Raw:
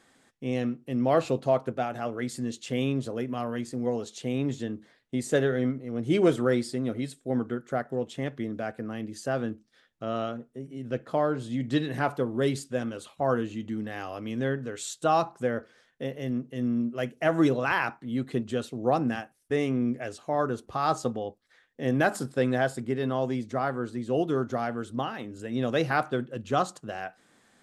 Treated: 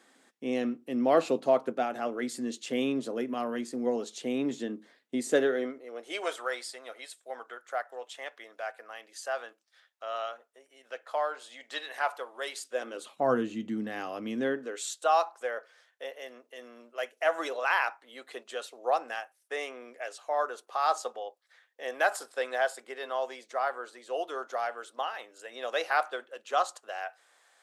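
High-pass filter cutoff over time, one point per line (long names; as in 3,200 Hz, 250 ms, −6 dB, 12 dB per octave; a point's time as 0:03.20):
high-pass filter 24 dB per octave
0:05.29 220 Hz
0:06.24 660 Hz
0:12.56 660 Hz
0:13.33 160 Hz
0:14.23 160 Hz
0:15.09 560 Hz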